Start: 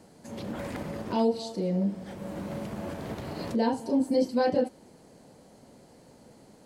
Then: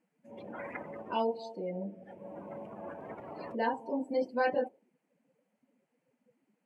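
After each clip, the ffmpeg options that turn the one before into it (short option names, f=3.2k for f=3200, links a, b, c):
-af "afftdn=nr=24:nf=-40,highpass=f=1.4k:p=1,highshelf=f=3.2k:t=q:w=3:g=-8,volume=4dB"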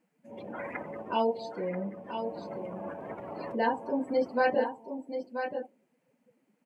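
-af "aecho=1:1:983:0.398,volume=3.5dB"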